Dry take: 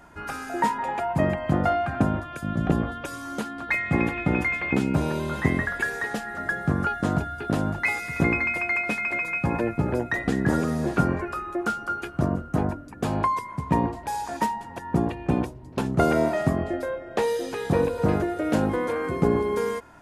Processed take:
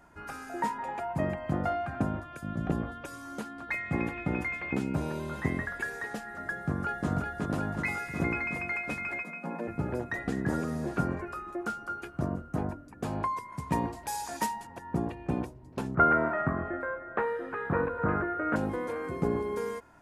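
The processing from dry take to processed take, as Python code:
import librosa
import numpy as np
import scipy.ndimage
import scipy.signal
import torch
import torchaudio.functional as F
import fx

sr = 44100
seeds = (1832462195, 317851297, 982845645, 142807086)

y = fx.echo_throw(x, sr, start_s=6.51, length_s=0.57, ms=370, feedback_pct=80, wet_db=-3.0)
y = fx.cheby_ripple_highpass(y, sr, hz=160.0, ripple_db=6, at=(9.22, 9.67), fade=0.02)
y = fx.high_shelf(y, sr, hz=2500.0, db=11.5, at=(13.52, 14.67))
y = fx.curve_eq(y, sr, hz=(740.0, 1400.0, 5900.0, 8500.0), db=(0, 14, -28, -21), at=(15.95, 18.56))
y = fx.peak_eq(y, sr, hz=3400.0, db=-3.0, octaves=0.77)
y = y * librosa.db_to_amplitude(-7.5)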